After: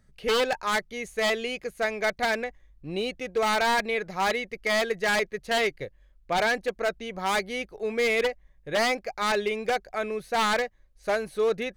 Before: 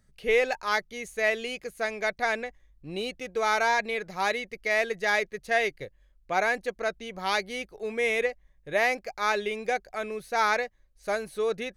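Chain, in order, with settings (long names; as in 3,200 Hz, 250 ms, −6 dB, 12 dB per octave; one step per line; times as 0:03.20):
high-shelf EQ 4,400 Hz −6 dB
wave folding −21.5 dBFS
level +3.5 dB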